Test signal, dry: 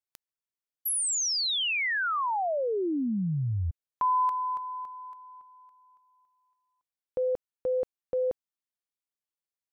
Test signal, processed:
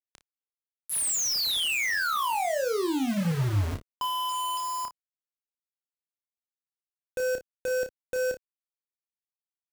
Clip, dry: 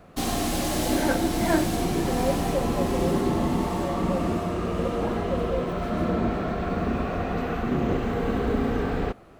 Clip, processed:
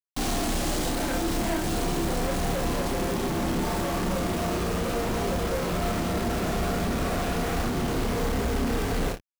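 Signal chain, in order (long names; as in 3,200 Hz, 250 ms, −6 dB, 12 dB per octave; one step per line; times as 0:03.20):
downward compressor 2.5 to 1, threshold −28 dBFS
downsampling to 22,050 Hz
hum removal 45.62 Hz, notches 5
log-companded quantiser 2 bits
low-shelf EQ 93 Hz +6 dB
on a send: ambience of single reflections 30 ms −6 dB, 57 ms −15 dB
on the sum: level −3 dB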